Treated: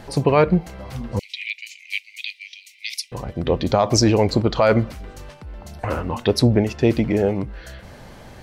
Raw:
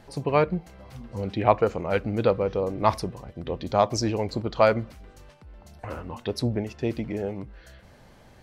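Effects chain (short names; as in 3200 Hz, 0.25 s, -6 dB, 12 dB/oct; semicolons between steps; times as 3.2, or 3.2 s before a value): 1.19–3.12 steep high-pass 2100 Hz 96 dB/oct; maximiser +16 dB; gain -5 dB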